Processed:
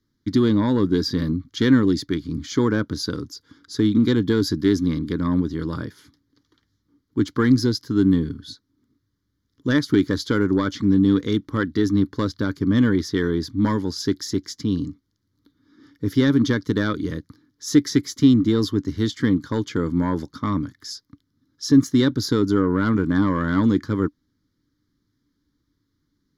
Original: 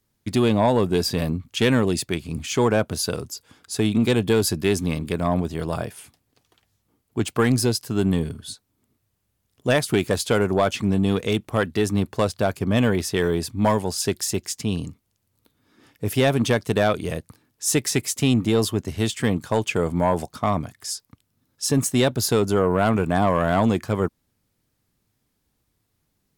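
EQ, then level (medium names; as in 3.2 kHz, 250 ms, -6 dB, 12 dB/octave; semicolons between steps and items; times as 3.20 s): low-pass 8.9 kHz 12 dB/octave; peaking EQ 290 Hz +14 dB 0.36 oct; static phaser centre 2.6 kHz, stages 6; 0.0 dB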